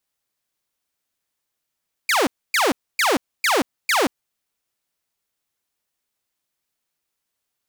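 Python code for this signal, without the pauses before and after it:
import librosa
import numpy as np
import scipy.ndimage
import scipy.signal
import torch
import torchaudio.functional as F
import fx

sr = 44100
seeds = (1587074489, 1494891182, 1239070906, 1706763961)

y = fx.laser_zaps(sr, level_db=-13, start_hz=2500.0, end_hz=230.0, length_s=0.18, wave='saw', shots=5, gap_s=0.27)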